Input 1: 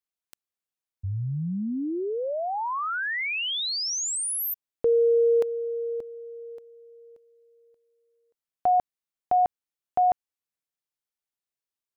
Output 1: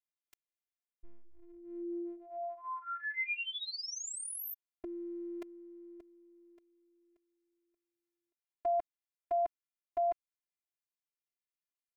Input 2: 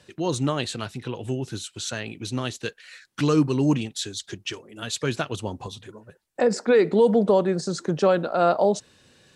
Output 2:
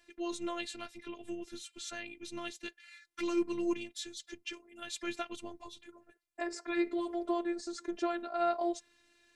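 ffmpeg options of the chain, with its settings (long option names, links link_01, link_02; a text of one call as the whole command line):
ffmpeg -i in.wav -af "afftfilt=real='hypot(re,im)*cos(PI*b)':imag='0':win_size=512:overlap=0.75,equalizer=frequency=2200:width=2.3:gain=7,volume=-9dB" out.wav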